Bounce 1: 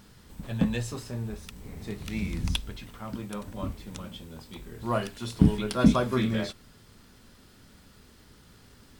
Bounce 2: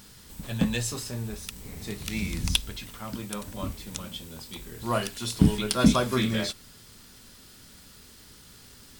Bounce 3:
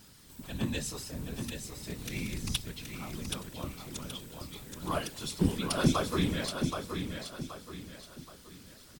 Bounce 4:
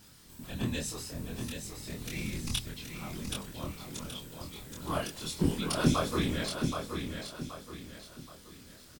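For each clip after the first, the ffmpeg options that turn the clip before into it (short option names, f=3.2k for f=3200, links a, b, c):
-af "highshelf=f=2.9k:g=11.5"
-af "afftfilt=real='hypot(re,im)*cos(2*PI*random(0))':imag='hypot(re,im)*sin(2*PI*random(1))':win_size=512:overlap=0.75,aecho=1:1:775|1550|2325|3100:0.501|0.185|0.0686|0.0254"
-filter_complex "[0:a]asplit=2[a][b];[b]adelay=25,volume=-2dB[c];[a][c]amix=inputs=2:normalize=0,volume=-2dB"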